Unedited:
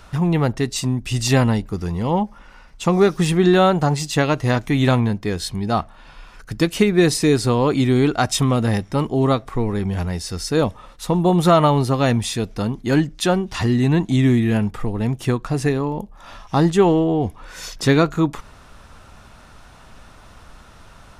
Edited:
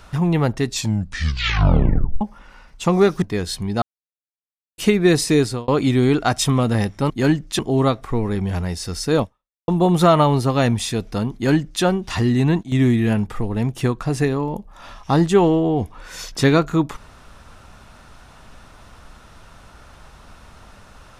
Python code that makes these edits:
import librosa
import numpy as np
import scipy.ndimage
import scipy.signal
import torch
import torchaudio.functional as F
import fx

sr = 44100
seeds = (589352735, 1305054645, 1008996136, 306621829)

y = fx.edit(x, sr, fx.tape_stop(start_s=0.67, length_s=1.54),
    fx.cut(start_s=3.22, length_s=1.93),
    fx.silence(start_s=5.75, length_s=0.96),
    fx.fade_out_span(start_s=7.33, length_s=0.28),
    fx.fade_out_span(start_s=10.66, length_s=0.46, curve='exp'),
    fx.duplicate(start_s=12.78, length_s=0.49, to_s=9.03),
    fx.fade_down_up(start_s=13.81, length_s=0.61, db=-13.5, fade_s=0.26, curve='log'), tone=tone)